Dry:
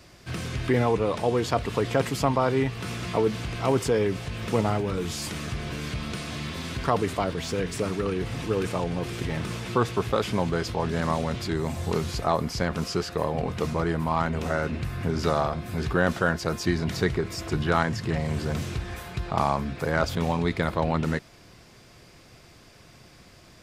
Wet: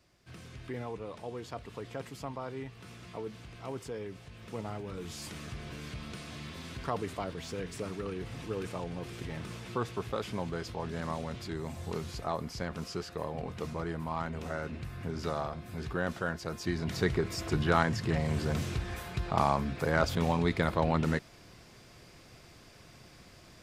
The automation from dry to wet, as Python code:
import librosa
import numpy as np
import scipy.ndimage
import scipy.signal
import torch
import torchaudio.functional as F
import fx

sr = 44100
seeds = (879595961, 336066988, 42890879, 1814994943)

y = fx.gain(x, sr, db=fx.line((4.42, -16.5), (5.22, -10.0), (16.52, -10.0), (17.18, -3.0)))